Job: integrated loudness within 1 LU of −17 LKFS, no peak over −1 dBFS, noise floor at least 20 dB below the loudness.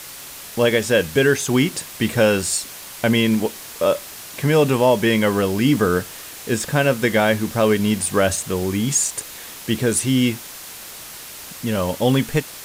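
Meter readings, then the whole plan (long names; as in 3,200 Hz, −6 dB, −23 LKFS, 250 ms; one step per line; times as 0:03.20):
background noise floor −37 dBFS; target noise floor −40 dBFS; integrated loudness −19.5 LKFS; sample peak −5.5 dBFS; target loudness −17.0 LKFS
→ broadband denoise 6 dB, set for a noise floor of −37 dBFS
level +2.5 dB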